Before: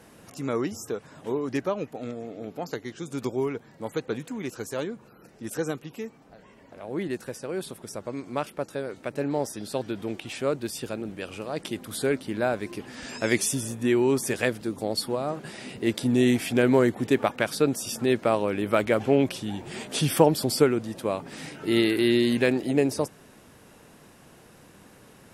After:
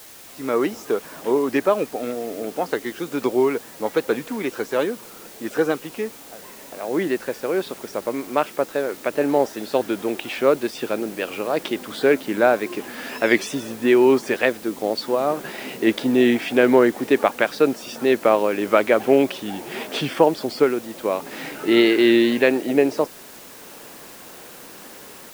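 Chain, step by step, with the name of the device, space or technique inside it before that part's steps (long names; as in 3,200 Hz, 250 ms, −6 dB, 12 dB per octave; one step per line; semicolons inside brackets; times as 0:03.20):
dictaphone (band-pass filter 290–3,200 Hz; automatic gain control gain up to 11.5 dB; tape wow and flutter; white noise bed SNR 22 dB)
level −1 dB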